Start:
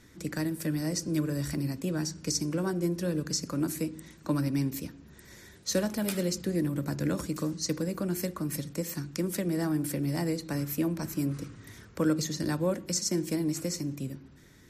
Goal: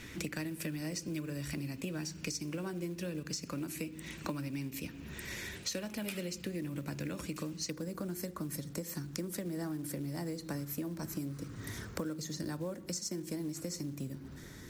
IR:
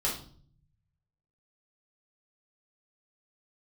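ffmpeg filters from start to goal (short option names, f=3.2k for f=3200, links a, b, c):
-af "asetnsamples=n=441:p=0,asendcmd='7.7 equalizer g -3',equalizer=f=2.6k:w=2.1:g=11,acompressor=threshold=-43dB:ratio=10,acrusher=bits=6:mode=log:mix=0:aa=0.000001,volume=7dB"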